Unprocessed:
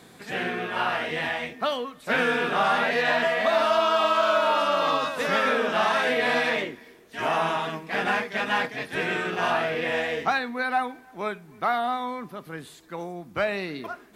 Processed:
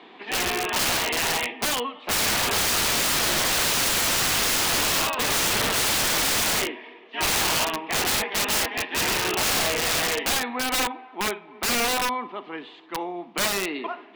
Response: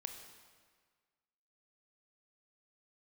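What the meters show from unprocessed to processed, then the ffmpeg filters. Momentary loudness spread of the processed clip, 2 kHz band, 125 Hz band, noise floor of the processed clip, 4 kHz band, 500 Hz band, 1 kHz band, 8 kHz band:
10 LU, 0.0 dB, +4.0 dB, -47 dBFS, +9.0 dB, -5.0 dB, -3.0 dB, +23.5 dB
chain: -filter_complex "[0:a]highpass=f=280:w=0.5412,highpass=f=280:w=1.3066,equalizer=f=540:t=q:w=4:g=-9,equalizer=f=930:t=q:w=4:g=5,equalizer=f=1.5k:t=q:w=4:g=-9,equalizer=f=2.9k:t=q:w=4:g=6,lowpass=f=3.3k:w=0.5412,lowpass=f=3.3k:w=1.3066,asplit=2[a][b];[1:a]atrim=start_sample=2205,adelay=57[c];[b][c]afir=irnorm=-1:irlink=0,volume=-13dB[d];[a][d]amix=inputs=2:normalize=0,aeval=exprs='(mod(15.8*val(0)+1,2)-1)/15.8':c=same,volume=6dB"

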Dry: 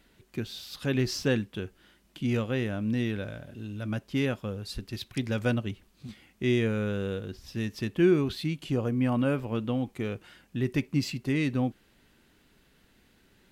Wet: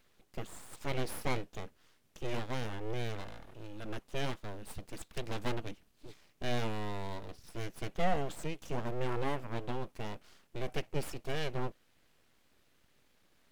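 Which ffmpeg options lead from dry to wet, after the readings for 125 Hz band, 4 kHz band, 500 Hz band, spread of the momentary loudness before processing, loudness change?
-10.0 dB, -6.5 dB, -8.0 dB, 13 LU, -9.5 dB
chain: -af "aeval=exprs='abs(val(0))':c=same,volume=-5dB"

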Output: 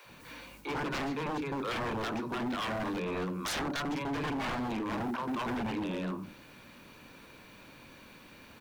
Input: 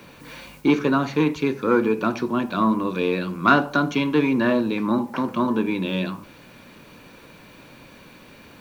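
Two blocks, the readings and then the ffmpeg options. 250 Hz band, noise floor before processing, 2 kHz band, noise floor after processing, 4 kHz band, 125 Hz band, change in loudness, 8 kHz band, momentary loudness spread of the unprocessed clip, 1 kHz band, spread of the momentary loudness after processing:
-14.0 dB, -48 dBFS, -11.0 dB, -54 dBFS, -6.0 dB, -10.5 dB, -12.5 dB, n/a, 7 LU, -10.5 dB, 19 LU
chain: -filter_complex "[0:a]acrossover=split=310|480|1900[a][b][c][d];[d]acompressor=threshold=-44dB:ratio=5[e];[a][b][c][e]amix=inputs=4:normalize=0,acrossover=split=160|490[f][g][h];[f]adelay=40[i];[g]adelay=90[j];[i][j][h]amix=inputs=3:normalize=0,aeval=exprs='0.0668*(abs(mod(val(0)/0.0668+3,4)-2)-1)':c=same,volume=-5.5dB"

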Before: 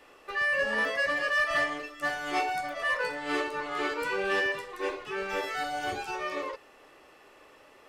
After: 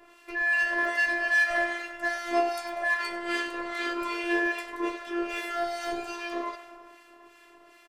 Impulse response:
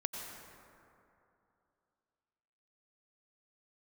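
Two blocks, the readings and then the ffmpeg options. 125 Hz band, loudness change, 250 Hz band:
under -10 dB, +1.5 dB, +6.0 dB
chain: -filter_complex "[0:a]asplit=2[a][b];[1:a]atrim=start_sample=2205[c];[b][c]afir=irnorm=-1:irlink=0,volume=-10.5dB[d];[a][d]amix=inputs=2:normalize=0,acrossover=split=1400[e][f];[e]aeval=exprs='val(0)*(1-0.7/2+0.7/2*cos(2*PI*2.5*n/s))':c=same[g];[f]aeval=exprs='val(0)*(1-0.7/2-0.7/2*cos(2*PI*2.5*n/s))':c=same[h];[g][h]amix=inputs=2:normalize=0,asplit=6[i][j][k][l][m][n];[j]adelay=97,afreqshift=84,volume=-15dB[o];[k]adelay=194,afreqshift=168,volume=-20.4dB[p];[l]adelay=291,afreqshift=252,volume=-25.7dB[q];[m]adelay=388,afreqshift=336,volume=-31.1dB[r];[n]adelay=485,afreqshift=420,volume=-36.4dB[s];[i][o][p][q][r][s]amix=inputs=6:normalize=0,afftfilt=real='hypot(re,im)*cos(PI*b)':imag='0':win_size=512:overlap=0.75,volume=5.5dB"

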